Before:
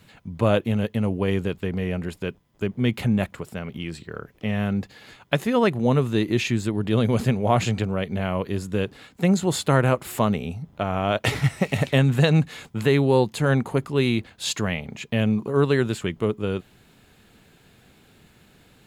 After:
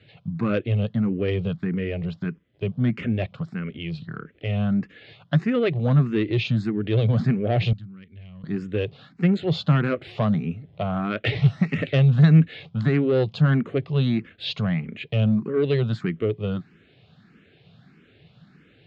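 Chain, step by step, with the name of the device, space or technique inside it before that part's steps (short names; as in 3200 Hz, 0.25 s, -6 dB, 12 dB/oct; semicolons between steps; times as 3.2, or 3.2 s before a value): barber-pole phaser into a guitar amplifier (endless phaser +1.6 Hz; soft clip -16.5 dBFS, distortion -17 dB; speaker cabinet 87–4100 Hz, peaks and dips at 110 Hz +5 dB, 160 Hz +9 dB, 920 Hz -10 dB); 7.73–8.44 passive tone stack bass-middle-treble 6-0-2; gain +2 dB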